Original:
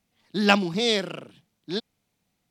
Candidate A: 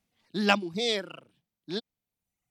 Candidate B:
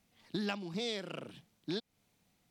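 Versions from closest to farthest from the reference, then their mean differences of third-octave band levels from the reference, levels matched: A, B; 3.5, 5.0 decibels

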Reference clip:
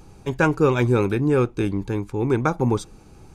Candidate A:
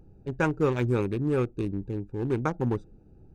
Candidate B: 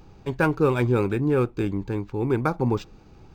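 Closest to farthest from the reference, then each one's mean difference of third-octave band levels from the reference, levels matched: B, A; 1.5, 3.5 decibels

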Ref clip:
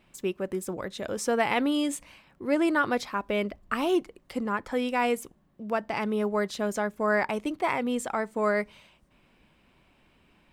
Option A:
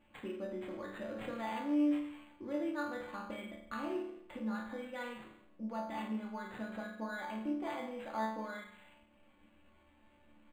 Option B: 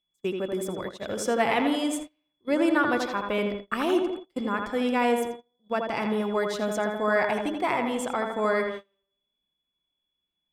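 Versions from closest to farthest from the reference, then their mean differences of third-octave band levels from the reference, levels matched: B, A; 5.5, 8.0 decibels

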